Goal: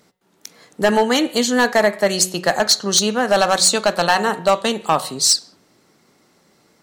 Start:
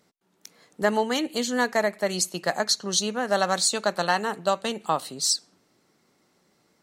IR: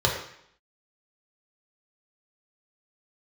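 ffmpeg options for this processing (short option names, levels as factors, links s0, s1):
-filter_complex "[0:a]bandreject=f=184.6:t=h:w=4,bandreject=f=369.2:t=h:w=4,bandreject=f=553.8:t=h:w=4,bandreject=f=738.4:t=h:w=4,bandreject=f=923:t=h:w=4,bandreject=f=1107.6:t=h:w=4,bandreject=f=1292.2:t=h:w=4,bandreject=f=1476.8:t=h:w=4,bandreject=f=1661.4:t=h:w=4,bandreject=f=1846:t=h:w=4,bandreject=f=2030.6:t=h:w=4,bandreject=f=2215.2:t=h:w=4,bandreject=f=2399.8:t=h:w=4,bandreject=f=2584.4:t=h:w=4,bandreject=f=2769:t=h:w=4,bandreject=f=2953.6:t=h:w=4,bandreject=f=3138.2:t=h:w=4,bandreject=f=3322.8:t=h:w=4,bandreject=f=3507.4:t=h:w=4,bandreject=f=3692:t=h:w=4,bandreject=f=3876.6:t=h:w=4,asoftclip=type=hard:threshold=0.158,asplit=2[s0][s1];[1:a]atrim=start_sample=2205,afade=t=out:st=0.21:d=0.01,atrim=end_sample=9702,adelay=41[s2];[s1][s2]afir=irnorm=-1:irlink=0,volume=0.02[s3];[s0][s3]amix=inputs=2:normalize=0,volume=2.82"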